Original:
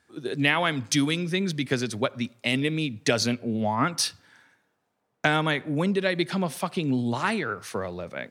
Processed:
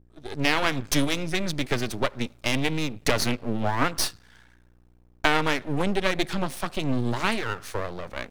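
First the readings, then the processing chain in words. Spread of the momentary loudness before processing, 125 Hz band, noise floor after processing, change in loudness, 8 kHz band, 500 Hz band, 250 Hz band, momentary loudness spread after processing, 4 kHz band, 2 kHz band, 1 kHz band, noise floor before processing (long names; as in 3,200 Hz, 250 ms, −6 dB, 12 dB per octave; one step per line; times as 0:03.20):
6 LU, −1.0 dB, −58 dBFS, −0.5 dB, 0.0 dB, −0.5 dB, −2.0 dB, 7 LU, 0.0 dB, 0.0 dB, +0.5 dB, −75 dBFS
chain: fade in at the beginning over 0.57 s
mains hum 60 Hz, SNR 31 dB
half-wave rectification
level +4 dB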